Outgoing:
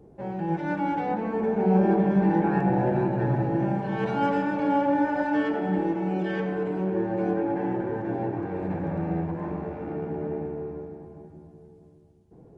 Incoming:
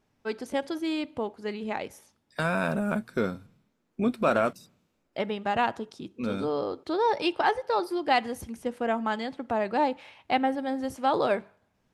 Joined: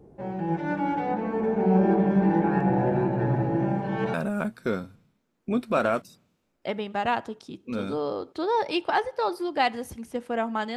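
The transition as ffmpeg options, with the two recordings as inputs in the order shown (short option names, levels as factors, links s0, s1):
-filter_complex "[0:a]apad=whole_dur=10.76,atrim=end=10.76,atrim=end=4.142[s0];[1:a]atrim=start=2.648:end=9.27[s1];[s0][s1]acrossfade=d=0.004:c1=hsin:c2=hsin"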